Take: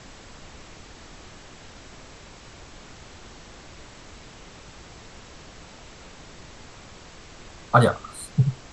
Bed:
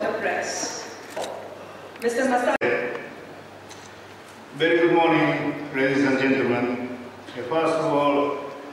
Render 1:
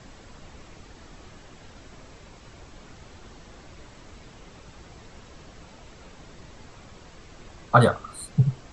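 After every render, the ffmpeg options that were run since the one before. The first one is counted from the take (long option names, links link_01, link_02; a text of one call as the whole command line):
ffmpeg -i in.wav -af "afftdn=noise_reduction=6:noise_floor=-46" out.wav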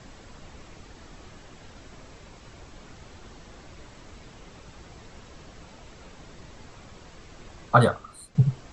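ffmpeg -i in.wav -filter_complex "[0:a]asplit=2[link_01][link_02];[link_01]atrim=end=8.35,asetpts=PTS-STARTPTS,afade=type=out:start_time=7.67:duration=0.68:silence=0.266073[link_03];[link_02]atrim=start=8.35,asetpts=PTS-STARTPTS,afade=type=in:duration=0.004:curve=hsin:silence=0.266073[link_04];[link_03][link_04]concat=n=2:v=0:a=1" out.wav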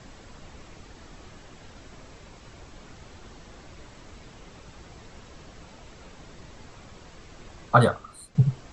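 ffmpeg -i in.wav -af anull out.wav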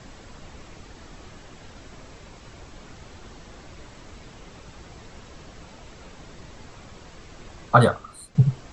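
ffmpeg -i in.wav -af "volume=2.5dB,alimiter=limit=-1dB:level=0:latency=1" out.wav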